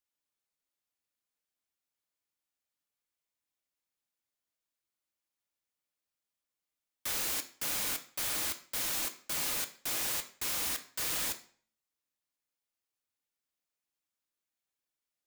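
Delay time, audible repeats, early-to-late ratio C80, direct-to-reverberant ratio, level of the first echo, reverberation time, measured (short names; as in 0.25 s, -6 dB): none, none, 18.0 dB, 6.0 dB, none, 0.50 s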